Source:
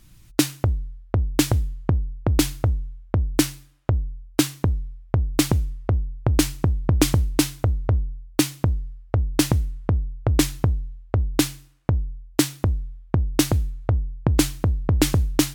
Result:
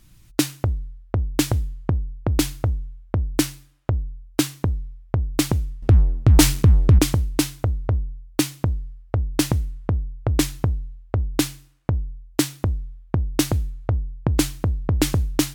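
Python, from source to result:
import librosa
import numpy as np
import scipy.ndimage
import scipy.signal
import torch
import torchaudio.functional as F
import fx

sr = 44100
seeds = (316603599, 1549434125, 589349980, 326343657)

y = fx.leveller(x, sr, passes=3, at=(5.82, 6.99))
y = F.gain(torch.from_numpy(y), -1.0).numpy()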